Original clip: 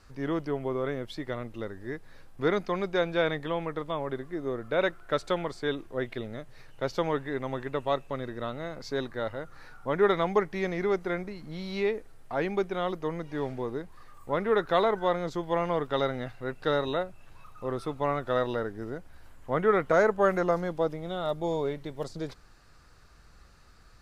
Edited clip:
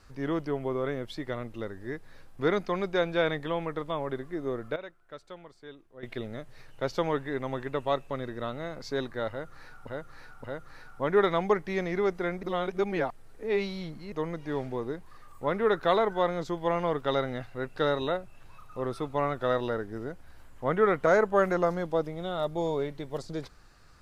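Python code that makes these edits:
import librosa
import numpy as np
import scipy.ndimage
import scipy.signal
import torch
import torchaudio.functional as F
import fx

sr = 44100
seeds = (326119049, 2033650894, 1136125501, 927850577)

y = fx.edit(x, sr, fx.fade_down_up(start_s=4.53, length_s=1.73, db=-16.5, fade_s=0.23, curve='log'),
    fx.repeat(start_s=9.3, length_s=0.57, count=3),
    fx.reverse_span(start_s=11.29, length_s=1.69), tone=tone)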